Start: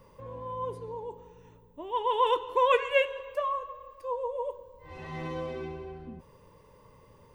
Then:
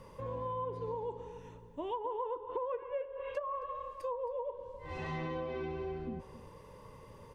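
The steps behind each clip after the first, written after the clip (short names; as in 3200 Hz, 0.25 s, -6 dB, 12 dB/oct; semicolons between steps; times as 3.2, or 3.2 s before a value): treble ducked by the level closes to 790 Hz, closed at -25.5 dBFS; compressor 8:1, threshold -38 dBFS, peak gain reduction 17 dB; outdoor echo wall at 46 m, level -15 dB; gain +3.5 dB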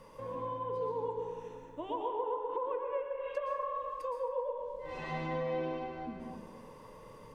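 bell 72 Hz -15 dB 1.3 oct; notch 390 Hz, Q 13; plate-style reverb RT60 1.4 s, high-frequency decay 0.45×, pre-delay 0.105 s, DRR 1 dB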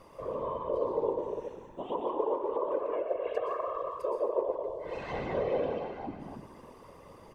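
speakerphone echo 0.15 s, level -17 dB; dynamic EQ 480 Hz, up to +6 dB, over -48 dBFS, Q 2.1; whisperiser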